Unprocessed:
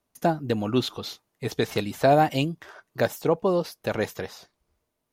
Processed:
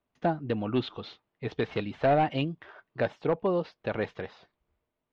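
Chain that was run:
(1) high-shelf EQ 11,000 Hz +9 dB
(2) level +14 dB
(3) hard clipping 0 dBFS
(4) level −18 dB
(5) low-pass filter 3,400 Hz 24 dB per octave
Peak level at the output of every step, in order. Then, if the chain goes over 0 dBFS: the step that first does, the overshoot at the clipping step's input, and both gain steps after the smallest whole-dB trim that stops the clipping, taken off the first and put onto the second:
−7.5, +6.5, 0.0, −18.0, −16.5 dBFS
step 2, 6.5 dB
step 2 +7 dB, step 4 −11 dB

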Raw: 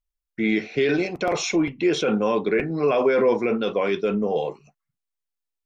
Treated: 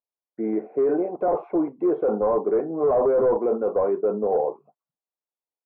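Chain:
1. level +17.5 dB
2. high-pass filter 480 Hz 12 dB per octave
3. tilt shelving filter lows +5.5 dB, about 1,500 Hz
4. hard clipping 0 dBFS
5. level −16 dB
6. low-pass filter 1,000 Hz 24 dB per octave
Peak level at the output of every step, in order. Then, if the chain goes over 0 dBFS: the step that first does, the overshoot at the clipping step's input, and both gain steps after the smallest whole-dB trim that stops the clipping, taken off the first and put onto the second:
+8.0, +5.0, +8.5, 0.0, −16.0, −14.5 dBFS
step 1, 8.5 dB
step 1 +8.5 dB, step 5 −7 dB

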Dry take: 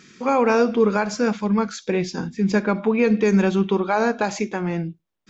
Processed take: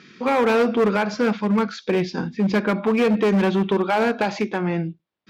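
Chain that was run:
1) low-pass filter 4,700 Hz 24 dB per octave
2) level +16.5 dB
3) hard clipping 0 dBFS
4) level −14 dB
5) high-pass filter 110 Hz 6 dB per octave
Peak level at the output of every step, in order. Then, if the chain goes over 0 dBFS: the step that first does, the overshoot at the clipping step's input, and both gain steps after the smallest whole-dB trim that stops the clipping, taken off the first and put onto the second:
−8.0, +8.5, 0.0, −14.0, −10.5 dBFS
step 2, 8.5 dB
step 2 +7.5 dB, step 4 −5 dB

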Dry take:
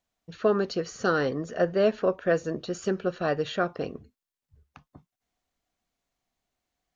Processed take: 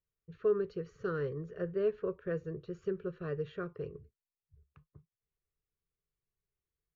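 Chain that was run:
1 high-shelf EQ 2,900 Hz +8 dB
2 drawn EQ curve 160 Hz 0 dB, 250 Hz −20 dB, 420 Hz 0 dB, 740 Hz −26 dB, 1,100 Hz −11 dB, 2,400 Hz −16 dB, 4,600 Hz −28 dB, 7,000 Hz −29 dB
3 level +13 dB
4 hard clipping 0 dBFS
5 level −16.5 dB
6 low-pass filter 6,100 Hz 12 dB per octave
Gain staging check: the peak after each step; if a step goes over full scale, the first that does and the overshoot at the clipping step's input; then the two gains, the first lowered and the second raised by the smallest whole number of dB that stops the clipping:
−10.0, −17.5, −4.5, −4.5, −21.0, −21.0 dBFS
no step passes full scale

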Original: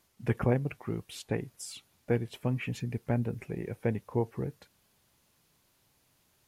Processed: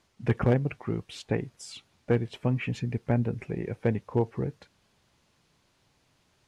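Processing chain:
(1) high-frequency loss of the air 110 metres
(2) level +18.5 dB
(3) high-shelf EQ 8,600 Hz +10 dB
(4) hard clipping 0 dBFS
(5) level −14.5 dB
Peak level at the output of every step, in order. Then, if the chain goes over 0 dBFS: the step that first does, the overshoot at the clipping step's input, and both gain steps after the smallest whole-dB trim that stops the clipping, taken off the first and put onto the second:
−15.0, +3.5, +3.5, 0.0, −14.5 dBFS
step 2, 3.5 dB
step 2 +14.5 dB, step 5 −10.5 dB

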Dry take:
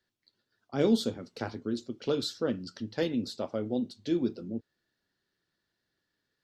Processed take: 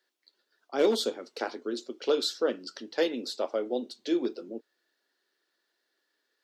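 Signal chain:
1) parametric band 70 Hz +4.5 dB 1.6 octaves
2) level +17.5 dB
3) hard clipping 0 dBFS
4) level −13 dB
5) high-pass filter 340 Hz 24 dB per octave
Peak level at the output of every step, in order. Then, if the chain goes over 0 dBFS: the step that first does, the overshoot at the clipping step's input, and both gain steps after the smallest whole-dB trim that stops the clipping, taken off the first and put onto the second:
−14.0, +3.5, 0.0, −13.0, −13.0 dBFS
step 2, 3.5 dB
step 2 +13.5 dB, step 4 −9 dB

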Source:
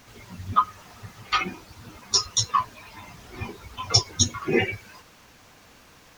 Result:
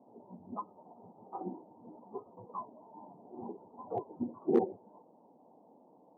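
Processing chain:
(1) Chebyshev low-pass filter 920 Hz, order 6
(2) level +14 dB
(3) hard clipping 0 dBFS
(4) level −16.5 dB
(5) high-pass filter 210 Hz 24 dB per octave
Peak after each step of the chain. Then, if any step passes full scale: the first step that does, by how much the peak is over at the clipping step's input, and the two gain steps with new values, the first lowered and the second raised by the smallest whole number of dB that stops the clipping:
−11.0, +3.0, 0.0, −16.5, −14.5 dBFS
step 2, 3.0 dB
step 2 +11 dB, step 4 −13.5 dB

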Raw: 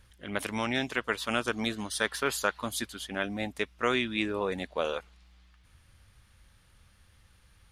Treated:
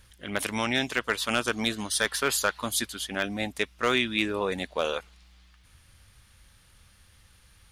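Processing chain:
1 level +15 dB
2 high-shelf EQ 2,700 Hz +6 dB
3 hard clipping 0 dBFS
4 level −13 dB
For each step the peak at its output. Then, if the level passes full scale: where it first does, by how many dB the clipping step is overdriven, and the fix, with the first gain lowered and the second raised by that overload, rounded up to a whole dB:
+4.0, +5.5, 0.0, −13.0 dBFS
step 1, 5.5 dB
step 1 +9 dB, step 4 −7 dB

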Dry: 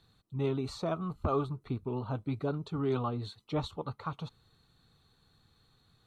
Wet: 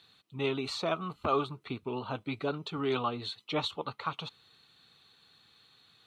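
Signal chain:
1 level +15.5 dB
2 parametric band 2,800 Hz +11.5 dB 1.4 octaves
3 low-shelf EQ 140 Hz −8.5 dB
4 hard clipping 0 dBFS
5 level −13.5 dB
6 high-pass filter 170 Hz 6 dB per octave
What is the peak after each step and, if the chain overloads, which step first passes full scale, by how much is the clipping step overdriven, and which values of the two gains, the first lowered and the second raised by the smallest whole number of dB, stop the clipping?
−2.5, −1.5, −1.5, −1.5, −15.0, −15.0 dBFS
no step passes full scale

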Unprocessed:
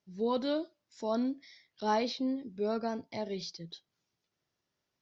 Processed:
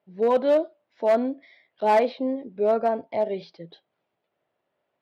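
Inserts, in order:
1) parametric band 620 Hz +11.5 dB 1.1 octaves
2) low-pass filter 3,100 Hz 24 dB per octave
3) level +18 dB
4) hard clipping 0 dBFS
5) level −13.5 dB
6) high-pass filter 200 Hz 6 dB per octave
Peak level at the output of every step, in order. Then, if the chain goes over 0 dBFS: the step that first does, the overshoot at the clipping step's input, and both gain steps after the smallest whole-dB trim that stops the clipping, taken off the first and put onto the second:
−10.5, −11.0, +7.0, 0.0, −13.5, −11.0 dBFS
step 3, 7.0 dB
step 3 +11 dB, step 5 −6.5 dB

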